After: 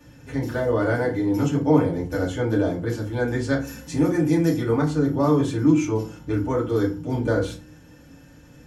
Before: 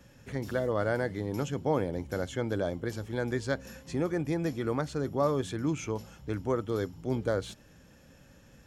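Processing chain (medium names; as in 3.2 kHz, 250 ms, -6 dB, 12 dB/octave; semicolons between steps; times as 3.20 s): 3.58–4.60 s: treble shelf 5.8 kHz -> 3.7 kHz +8.5 dB; FDN reverb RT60 0.36 s, low-frequency decay 1.5×, high-frequency decay 0.65×, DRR -5 dB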